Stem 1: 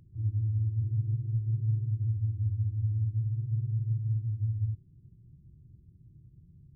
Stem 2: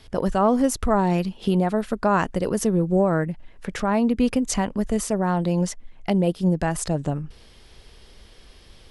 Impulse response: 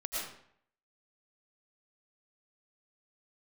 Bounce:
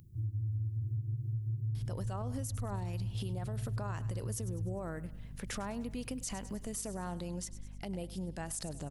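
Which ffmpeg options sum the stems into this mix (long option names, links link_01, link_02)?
-filter_complex "[0:a]acompressor=threshold=-34dB:ratio=3,volume=0dB[link_01];[1:a]acompressor=threshold=-27dB:ratio=6,aeval=exprs='val(0)+0.0126*(sin(2*PI*50*n/s)+sin(2*PI*2*50*n/s)/2+sin(2*PI*3*50*n/s)/3+sin(2*PI*4*50*n/s)/4+sin(2*PI*5*50*n/s)/5)':channel_layout=same,adelay=1750,volume=-9.5dB,asplit=2[link_02][link_03];[link_03]volume=-18.5dB,aecho=0:1:101|202|303|404|505|606|707:1|0.48|0.23|0.111|0.0531|0.0255|0.0122[link_04];[link_01][link_02][link_04]amix=inputs=3:normalize=0,crystalizer=i=3:c=0,alimiter=level_in=5.5dB:limit=-24dB:level=0:latency=1:release=48,volume=-5.5dB"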